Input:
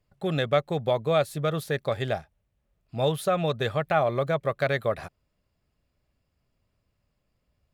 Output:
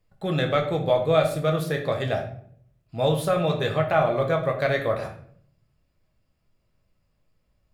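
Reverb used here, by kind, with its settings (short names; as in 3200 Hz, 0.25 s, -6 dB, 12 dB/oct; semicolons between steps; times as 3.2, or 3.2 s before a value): shoebox room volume 84 m³, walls mixed, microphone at 0.64 m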